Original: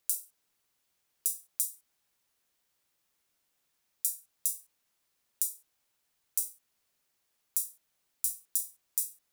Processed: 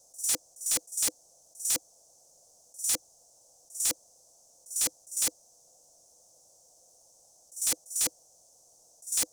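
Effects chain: whole clip reversed; EQ curve 160 Hz 0 dB, 300 Hz -9 dB, 690 Hz +11 dB, 1100 Hz -10 dB, 2100 Hz -30 dB, 4000 Hz -11 dB, 6000 Hz +12 dB, 9100 Hz +5 dB, 15000 Hz -12 dB; wrapped overs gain 18 dB; level quantiser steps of 11 dB; small resonant body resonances 310/500 Hz, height 9 dB; sine folder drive 12 dB, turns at -21 dBFS

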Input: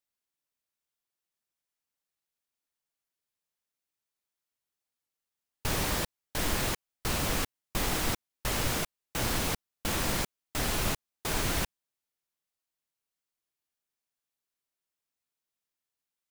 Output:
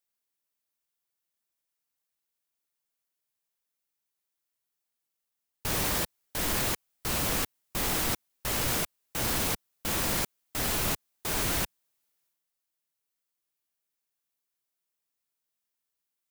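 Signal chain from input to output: low shelf 60 Hz -5 dB; transient shaper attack -2 dB, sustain +7 dB; high shelf 10000 Hz +7 dB

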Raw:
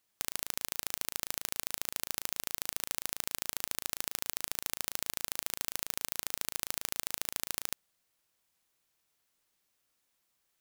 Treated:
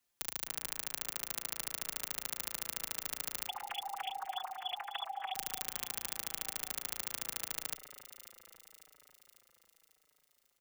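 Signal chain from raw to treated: 3.47–5.33 sine-wave speech; frequency shift -39 Hz; on a send: echo with dull and thin repeats by turns 0.273 s, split 2000 Hz, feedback 74%, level -11 dB; on the sum: endless flanger 5.2 ms -0.86 Hz

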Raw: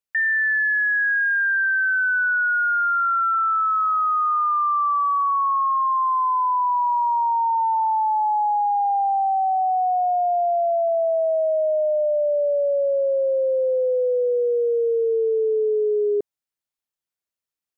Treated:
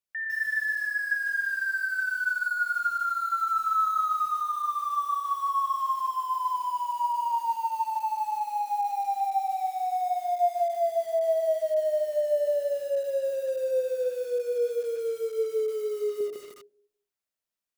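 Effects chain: 2.9–4.3 comb 2.4 ms, depth 48%; limiter -26 dBFS, peak gain reduction 12 dB; digital reverb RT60 0.77 s, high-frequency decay 0.55×, pre-delay 35 ms, DRR 0.5 dB; lo-fi delay 0.151 s, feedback 35%, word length 7-bit, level -4 dB; gain -3 dB

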